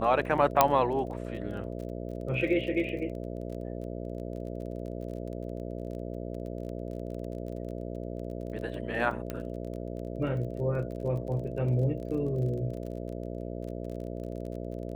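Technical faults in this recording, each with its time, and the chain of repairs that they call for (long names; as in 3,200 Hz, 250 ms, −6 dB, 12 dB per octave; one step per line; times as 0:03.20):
mains buzz 60 Hz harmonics 11 −37 dBFS
surface crackle 29 per second −39 dBFS
0:00.61: click −4 dBFS
0:09.30: click −20 dBFS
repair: click removal
hum removal 60 Hz, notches 11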